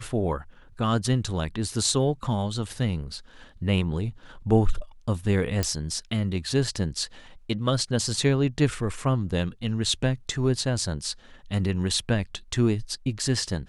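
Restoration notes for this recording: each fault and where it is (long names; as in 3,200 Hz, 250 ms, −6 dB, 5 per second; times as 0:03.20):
0:05.63: click −11 dBFS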